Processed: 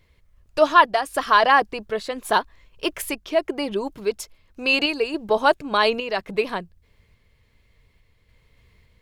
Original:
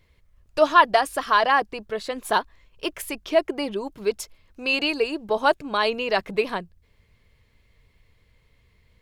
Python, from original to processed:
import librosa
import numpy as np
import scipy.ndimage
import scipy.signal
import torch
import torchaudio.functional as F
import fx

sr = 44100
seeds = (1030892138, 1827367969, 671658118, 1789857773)

y = fx.tremolo_random(x, sr, seeds[0], hz=3.5, depth_pct=55)
y = y * librosa.db_to_amplitude(4.0)